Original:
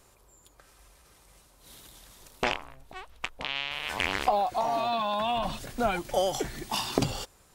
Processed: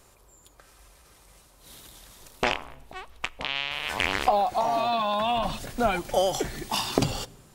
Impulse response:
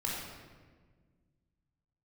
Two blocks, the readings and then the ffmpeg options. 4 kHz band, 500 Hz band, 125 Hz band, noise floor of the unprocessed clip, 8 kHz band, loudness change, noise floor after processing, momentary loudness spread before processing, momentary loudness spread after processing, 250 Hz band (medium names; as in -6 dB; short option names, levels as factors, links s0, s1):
+3.0 dB, +3.0 dB, +3.0 dB, -61 dBFS, +3.0 dB, +3.0 dB, -57 dBFS, 12 LU, 12 LU, +2.5 dB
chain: -filter_complex "[0:a]asplit=2[s0][s1];[1:a]atrim=start_sample=2205,asetrate=61740,aresample=44100[s2];[s1][s2]afir=irnorm=-1:irlink=0,volume=0.075[s3];[s0][s3]amix=inputs=2:normalize=0,volume=1.33"